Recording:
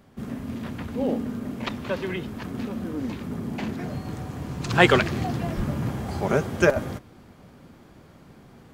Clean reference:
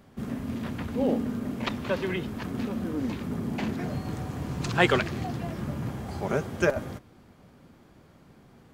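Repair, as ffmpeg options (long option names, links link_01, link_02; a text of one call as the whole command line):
ffmpeg -i in.wav -filter_complex "[0:a]asplit=3[link_01][link_02][link_03];[link_01]afade=type=out:start_time=5.56:duration=0.02[link_04];[link_02]highpass=frequency=140:width=0.5412,highpass=frequency=140:width=1.3066,afade=type=in:start_time=5.56:duration=0.02,afade=type=out:start_time=5.68:duration=0.02[link_05];[link_03]afade=type=in:start_time=5.68:duration=0.02[link_06];[link_04][link_05][link_06]amix=inputs=3:normalize=0,asetnsamples=nb_out_samples=441:pad=0,asendcmd='4.7 volume volume -5dB',volume=0dB" out.wav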